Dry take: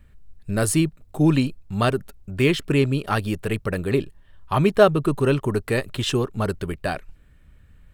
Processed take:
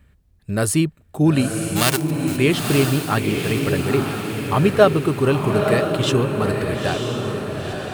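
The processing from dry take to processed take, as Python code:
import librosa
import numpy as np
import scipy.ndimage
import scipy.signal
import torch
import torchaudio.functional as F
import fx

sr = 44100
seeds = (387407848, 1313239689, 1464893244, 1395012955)

y = fx.envelope_flatten(x, sr, power=0.3, at=(1.75, 2.36), fade=0.02)
y = scipy.signal.sosfilt(scipy.signal.butter(2, 52.0, 'highpass', fs=sr, output='sos'), y)
y = fx.echo_diffused(y, sr, ms=934, feedback_pct=51, wet_db=-4.0)
y = F.gain(torch.from_numpy(y), 1.5).numpy()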